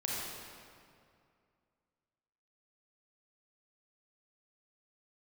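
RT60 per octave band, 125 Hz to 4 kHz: 2.6 s, 2.5 s, 2.4 s, 2.3 s, 2.0 s, 1.6 s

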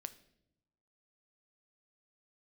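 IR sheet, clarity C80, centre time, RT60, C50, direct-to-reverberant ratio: 19.0 dB, 4 ms, no single decay rate, 16.0 dB, 11.5 dB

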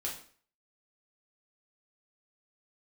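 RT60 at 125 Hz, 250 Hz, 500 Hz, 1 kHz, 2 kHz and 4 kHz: 0.50 s, 0.50 s, 0.50 s, 0.45 s, 0.45 s, 0.45 s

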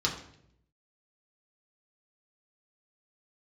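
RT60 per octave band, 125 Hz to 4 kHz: 1.1 s, 0.95 s, 0.80 s, 0.60 s, 0.65 s, 0.60 s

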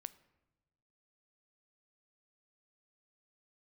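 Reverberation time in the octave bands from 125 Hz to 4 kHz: 1.6 s, 1.4 s, 1.2 s, 1.1 s, 0.90 s, 0.70 s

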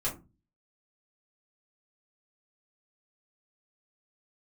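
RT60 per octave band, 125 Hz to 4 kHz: 0.55 s, 0.45 s, 0.30 s, 0.25 s, 0.20 s, 0.15 s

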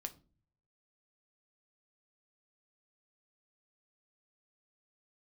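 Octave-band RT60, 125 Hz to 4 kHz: 0.95 s, 0.60 s, 0.45 s, 0.30 s, 0.25 s, 0.25 s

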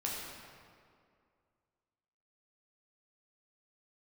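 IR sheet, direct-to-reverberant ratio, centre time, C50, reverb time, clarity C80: -4.5 dB, 110 ms, -0.5 dB, 2.2 s, 1.0 dB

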